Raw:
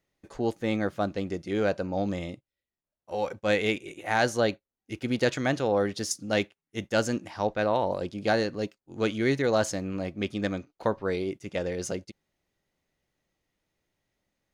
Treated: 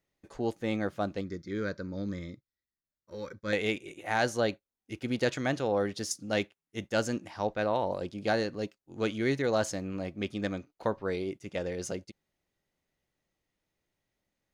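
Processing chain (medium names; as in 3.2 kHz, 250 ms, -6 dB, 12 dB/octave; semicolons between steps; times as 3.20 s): 1.21–3.53 s: static phaser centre 2.8 kHz, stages 6; trim -3.5 dB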